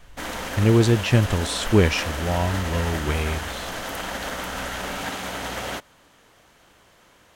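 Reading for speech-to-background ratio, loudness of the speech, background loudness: 8.0 dB, -22.0 LUFS, -30.0 LUFS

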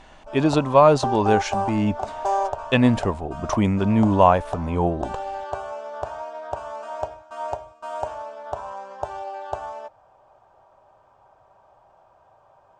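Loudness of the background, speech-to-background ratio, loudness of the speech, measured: -31.0 LUFS, 10.5 dB, -20.5 LUFS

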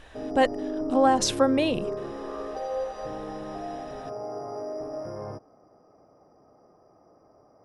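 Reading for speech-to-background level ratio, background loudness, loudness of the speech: 9.5 dB, -34.0 LUFS, -24.5 LUFS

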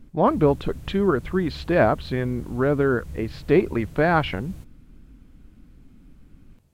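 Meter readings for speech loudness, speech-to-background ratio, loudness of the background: -23.0 LUFS, 18.0 dB, -41.0 LUFS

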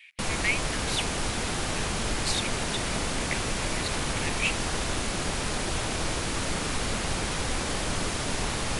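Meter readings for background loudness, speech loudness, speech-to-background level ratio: -29.5 LUFS, -34.0 LUFS, -4.5 dB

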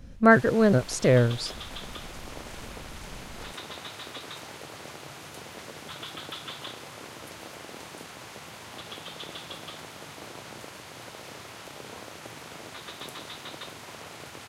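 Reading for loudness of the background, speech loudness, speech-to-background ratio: -41.0 LUFS, -21.5 LUFS, 19.5 dB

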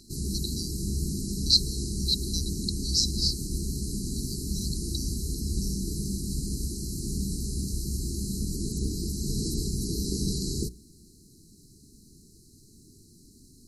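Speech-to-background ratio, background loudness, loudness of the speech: 3.5 dB, -32.0 LUFS, -28.5 LUFS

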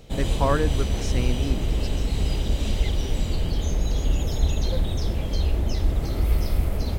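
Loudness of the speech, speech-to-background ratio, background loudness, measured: -29.0 LUFS, -3.0 dB, -26.0 LUFS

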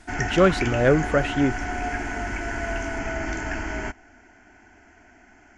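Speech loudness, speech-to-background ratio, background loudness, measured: -22.0 LUFS, 7.0 dB, -29.0 LUFS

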